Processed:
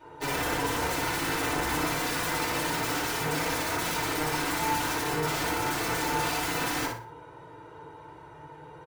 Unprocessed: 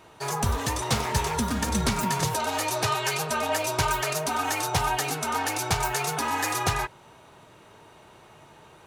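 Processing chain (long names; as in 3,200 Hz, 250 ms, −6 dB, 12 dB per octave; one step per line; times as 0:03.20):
high-pass filter 44 Hz 6 dB per octave
parametric band 15,000 Hz −10.5 dB 2.3 octaves
comb filter 2.1 ms, depth 52%
hum removal 114.2 Hz, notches 6
wrap-around overflow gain 26 dB
repeating echo 60 ms, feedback 29%, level −5.5 dB
feedback delay network reverb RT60 0.33 s, low-frequency decay 1.05×, high-frequency decay 0.35×, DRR −8 dB
level −7 dB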